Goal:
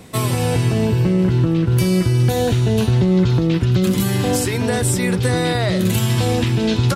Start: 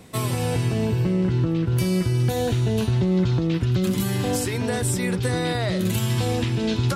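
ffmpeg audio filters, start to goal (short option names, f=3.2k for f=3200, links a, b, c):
-af "aecho=1:1:523|1046|1569|2092:0.0841|0.0488|0.0283|0.0164,volume=5.5dB"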